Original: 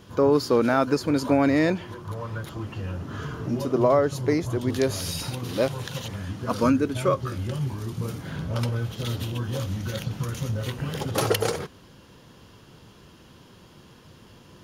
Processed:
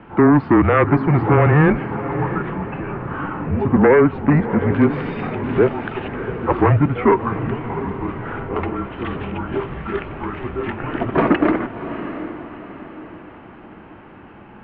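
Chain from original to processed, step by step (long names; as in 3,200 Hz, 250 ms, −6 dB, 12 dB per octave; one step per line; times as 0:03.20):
sine wavefolder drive 8 dB, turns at −7 dBFS
feedback delay with all-pass diffusion 699 ms, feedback 43%, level −11 dB
single-sideband voice off tune −150 Hz 270–2,400 Hz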